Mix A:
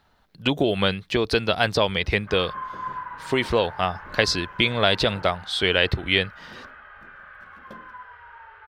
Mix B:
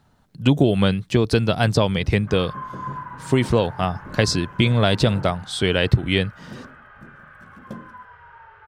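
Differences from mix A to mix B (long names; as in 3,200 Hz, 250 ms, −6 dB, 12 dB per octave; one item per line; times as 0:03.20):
first sound +3.5 dB
master: add octave-band graphic EQ 125/250/2,000/4,000/8,000 Hz +12/+5/−3/−4/+8 dB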